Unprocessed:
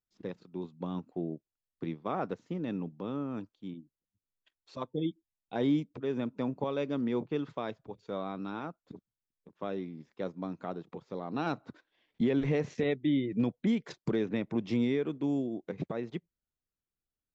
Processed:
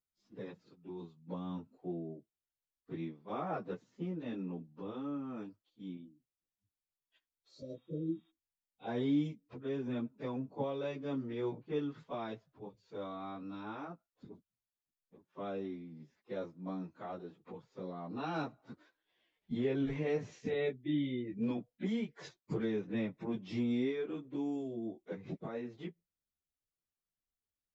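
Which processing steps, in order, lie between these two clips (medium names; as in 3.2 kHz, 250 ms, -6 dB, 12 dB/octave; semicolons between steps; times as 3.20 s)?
plain phase-vocoder stretch 1.6×; spectral replace 7.51–8.28 s, 640–3800 Hz before; trim -2.5 dB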